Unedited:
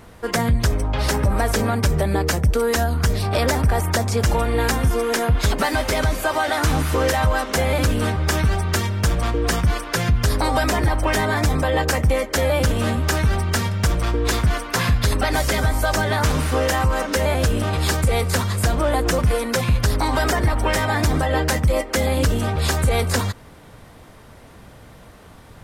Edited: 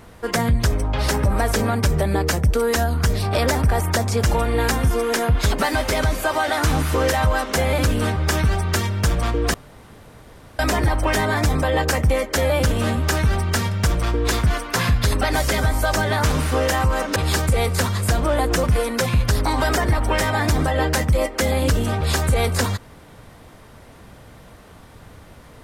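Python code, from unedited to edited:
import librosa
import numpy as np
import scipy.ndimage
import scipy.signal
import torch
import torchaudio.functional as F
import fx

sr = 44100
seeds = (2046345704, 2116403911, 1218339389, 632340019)

y = fx.edit(x, sr, fx.room_tone_fill(start_s=9.54, length_s=1.05),
    fx.cut(start_s=17.16, length_s=0.55), tone=tone)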